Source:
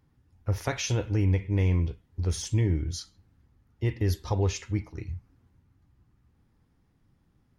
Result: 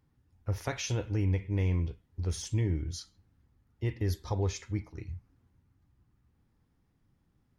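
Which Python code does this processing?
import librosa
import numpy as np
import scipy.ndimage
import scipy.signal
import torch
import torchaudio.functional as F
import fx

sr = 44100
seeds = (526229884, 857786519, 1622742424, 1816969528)

y = fx.notch(x, sr, hz=2800.0, q=7.3, at=(4.04, 4.91))
y = y * 10.0 ** (-4.5 / 20.0)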